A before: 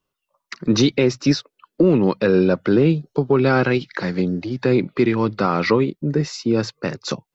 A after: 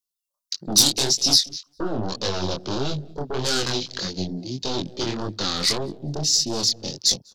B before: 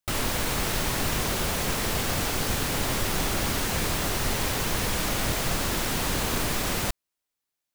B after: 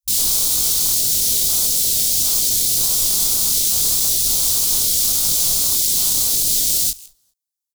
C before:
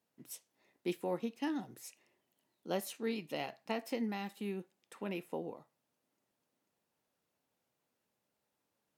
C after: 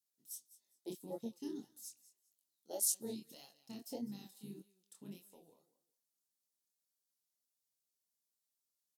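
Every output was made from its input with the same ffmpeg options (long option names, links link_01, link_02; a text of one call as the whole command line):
ffmpeg -i in.wav -filter_complex "[0:a]aeval=exprs='0.562*(cos(1*acos(clip(val(0)/0.562,-1,1)))-cos(1*PI/2))+0.0447*(cos(2*acos(clip(val(0)/0.562,-1,1)))-cos(2*PI/2))+0.251*(cos(5*acos(clip(val(0)/0.562,-1,1)))-cos(5*PI/2))+0.251*(cos(6*acos(clip(val(0)/0.562,-1,1)))-cos(6*PI/2))+0.112*(cos(8*acos(clip(val(0)/0.562,-1,1)))-cos(8*PI/2))':channel_layout=same,asplit=2[link_01][link_02];[link_02]aecho=0:1:201|402:0.15|0.0359[link_03];[link_01][link_03]amix=inputs=2:normalize=0,aexciter=amount=11.9:drive=4.2:freq=3500,afwtdn=0.141,flanger=delay=20:depth=7.5:speed=1.7,volume=-13.5dB" out.wav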